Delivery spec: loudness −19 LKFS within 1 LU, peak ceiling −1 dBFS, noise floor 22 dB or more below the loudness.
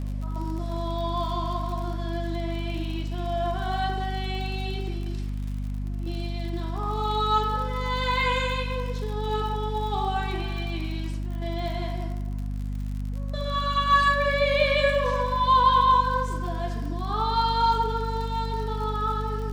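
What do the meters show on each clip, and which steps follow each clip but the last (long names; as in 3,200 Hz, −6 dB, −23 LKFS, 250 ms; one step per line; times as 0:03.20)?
crackle rate 46 per second; mains hum 50 Hz; hum harmonics up to 250 Hz; level of the hum −27 dBFS; integrated loudness −26.5 LKFS; sample peak −9.0 dBFS; target loudness −19.0 LKFS
→ click removal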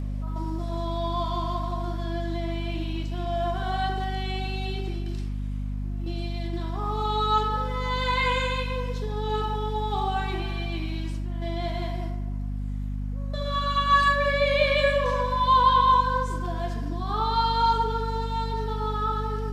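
crackle rate 0.051 per second; mains hum 50 Hz; hum harmonics up to 250 Hz; level of the hum −27 dBFS
→ hum removal 50 Hz, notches 5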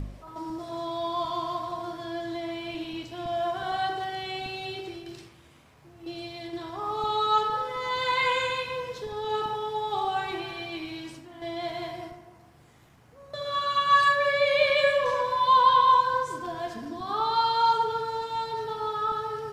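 mains hum none found; integrated loudness −26.5 LKFS; sample peak −10.0 dBFS; target loudness −19.0 LKFS
→ level +7.5 dB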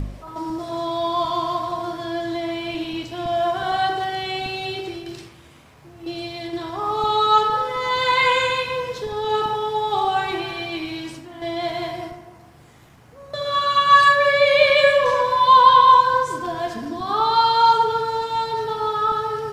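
integrated loudness −19.0 LKFS; sample peak −2.5 dBFS; background noise floor −48 dBFS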